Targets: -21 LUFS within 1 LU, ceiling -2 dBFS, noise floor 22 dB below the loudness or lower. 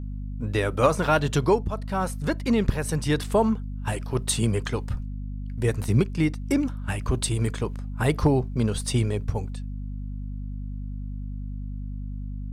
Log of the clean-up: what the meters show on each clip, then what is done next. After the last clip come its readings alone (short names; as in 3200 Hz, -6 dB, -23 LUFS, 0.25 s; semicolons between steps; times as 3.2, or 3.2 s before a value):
hum 50 Hz; harmonics up to 250 Hz; hum level -30 dBFS; loudness -26.5 LUFS; peak -7.5 dBFS; loudness target -21.0 LUFS
-> notches 50/100/150/200/250 Hz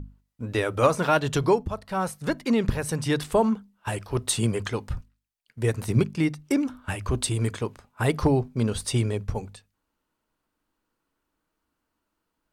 hum none; loudness -26.0 LUFS; peak -7.5 dBFS; loudness target -21.0 LUFS
-> gain +5 dB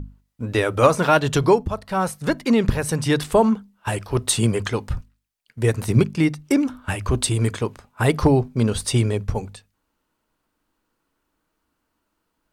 loudness -21.0 LUFS; peak -2.5 dBFS; noise floor -75 dBFS